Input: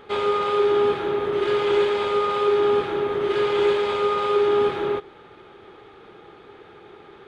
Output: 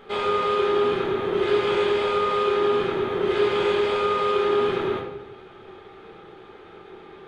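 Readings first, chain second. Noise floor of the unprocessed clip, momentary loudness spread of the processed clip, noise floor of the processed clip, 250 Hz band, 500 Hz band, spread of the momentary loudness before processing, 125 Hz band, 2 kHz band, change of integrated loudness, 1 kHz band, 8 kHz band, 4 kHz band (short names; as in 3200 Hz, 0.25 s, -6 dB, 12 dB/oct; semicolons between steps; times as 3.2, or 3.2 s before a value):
-48 dBFS, 4 LU, -46 dBFS, +1.5 dB, -1.5 dB, 5 LU, +2.0 dB, +1.0 dB, -1.0 dB, 0.0 dB, n/a, +0.5 dB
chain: shoebox room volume 200 m³, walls mixed, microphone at 1.1 m; gain -2.5 dB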